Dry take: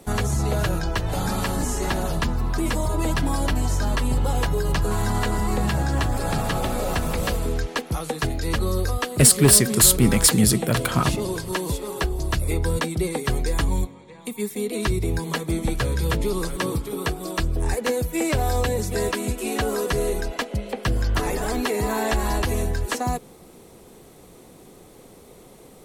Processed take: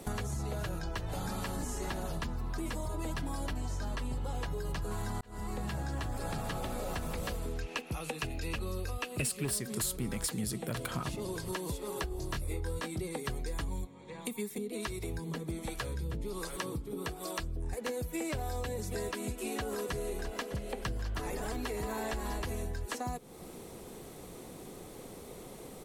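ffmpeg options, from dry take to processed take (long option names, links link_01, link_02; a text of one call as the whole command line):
ffmpeg -i in.wav -filter_complex "[0:a]asettb=1/sr,asplit=3[link_01][link_02][link_03];[link_01]atrim=end=3.534[link_04];[link_02]atrim=start=3.53:end=4.6,asetpts=PTS-STARTPTS,afade=type=in:duration=0.004:curve=qsin,afade=type=out:start_time=1.066:duration=0.004:curve=qsin,acrossover=split=8200[link_05][link_06];[link_06]acompressor=threshold=-46dB:ratio=4:attack=1:release=60[link_07];[link_05][link_07]amix=inputs=2:normalize=0[link_08];[link_03]atrim=start=4.596[link_09];[link_04][link_08]acrossfade=duration=0.004:curve1=hsin:curve2=qsin[link_10];[link_10][link_09]acrossfade=duration=0.004:curve1=qsin:curve2=hsin,asettb=1/sr,asplit=3[link_11][link_12][link_13];[link_11]atrim=end=7.594[link_14];[link_12]atrim=start=7.59:end=9.45,asetpts=PTS-STARTPTS,afade=type=in:duration=0.004:curve=qsin,afade=type=out:start_time=1.856:duration=0.004:curve=qsin,equalizer=frequency=2600:width=6.5:gain=14.5[link_15];[link_13]atrim=start=9.446[link_16];[link_14][link_15]acrossfade=duration=0.004:curve1=hsin:curve2=qsin[link_17];[link_17][link_16]acrossfade=duration=0.004:curve1=qsin:curve2=hsin,asettb=1/sr,asplit=3[link_18][link_19][link_20];[link_18]atrim=end=12.094[link_21];[link_19]atrim=start=12.09:end=13.02,asetpts=PTS-STARTPTS,afade=type=in:duration=0.004:curve=qsin,afade=type=out:start_time=0.926:duration=0.004:curve=qsin,asplit=2[link_22][link_23];[link_23]adelay=22,volume=-3dB[link_24];[link_22][link_24]amix=inputs=2:normalize=0,atrim=end_sample=41013[link_25];[link_20]atrim=start=13.016[link_26];[link_21][link_25]acrossfade=duration=0.004:curve1=hsin:curve2=qsin[link_27];[link_27][link_26]acrossfade=duration=0.004:curve1=qsin:curve2=hsin,asettb=1/sr,asplit=3[link_28][link_29][link_30];[link_28]atrim=end=14.584[link_31];[link_29]atrim=start=14.58:end=17.73,asetpts=PTS-STARTPTS,afade=type=in:duration=0.004:curve=qsin,afade=type=out:start_time=3.146:duration=0.004:curve=qsin,acrossover=split=440[link_32][link_33];[link_32]aeval=exprs='val(0)*(1-0.7/2+0.7/2*cos(2*PI*1.3*n/s))':channel_layout=same[link_34];[link_33]aeval=exprs='val(0)*(1-0.7/2-0.7/2*cos(2*PI*1.3*n/s))':channel_layout=same[link_35];[link_34][link_35]amix=inputs=2:normalize=0[link_36];[link_30]atrim=start=17.726[link_37];[link_31][link_36]acrossfade=duration=0.004:curve1=hsin:curve2=qsin[link_38];[link_38][link_37]acrossfade=duration=0.004:curve1=qsin:curve2=hsin,asplit=3[link_39][link_40][link_41];[link_39]afade=type=out:start_time=19.7:duration=0.02[link_42];[link_40]aecho=1:1:604|661:0.133|0.237,afade=type=in:start_time=19.7:duration=0.02,afade=type=out:start_time=22.56:duration=0.02[link_43];[link_41]afade=type=in:start_time=22.56:duration=0.02[link_44];[link_42][link_43][link_44]amix=inputs=3:normalize=0,asplit=2[link_45][link_46];[link_45]atrim=end=5.21,asetpts=PTS-STARTPTS,afade=type=out:start_time=5.206:duration=0.004:curve=hsin[link_47];[link_46]atrim=start=5.21,asetpts=PTS-STARTPTS,afade=type=in:duration=0.67[link_48];[link_47][link_48]concat=n=2:v=0:a=1,acompressor=threshold=-36dB:ratio=4" out.wav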